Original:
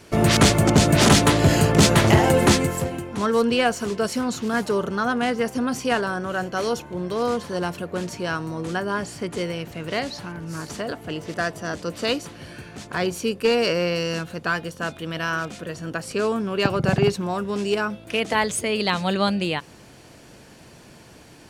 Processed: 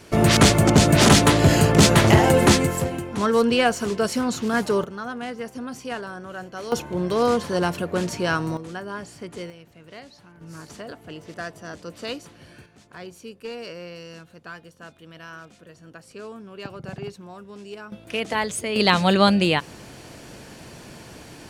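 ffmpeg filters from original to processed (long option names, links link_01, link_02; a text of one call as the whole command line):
ffmpeg -i in.wav -af "asetnsamples=nb_out_samples=441:pad=0,asendcmd='4.84 volume volume -9dB;6.72 volume volume 3.5dB;8.57 volume volume -7.5dB;9.5 volume volume -16dB;10.41 volume volume -8dB;12.66 volume volume -15dB;17.92 volume volume -3dB;18.76 volume volume 5dB',volume=1dB" out.wav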